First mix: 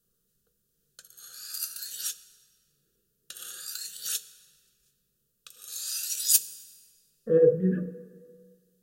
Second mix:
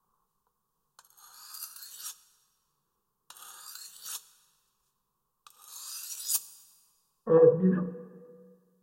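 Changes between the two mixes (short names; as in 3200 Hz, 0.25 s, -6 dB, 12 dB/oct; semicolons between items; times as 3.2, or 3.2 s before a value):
background -9.0 dB; master: remove Chebyshev band-stop 530–1700 Hz, order 2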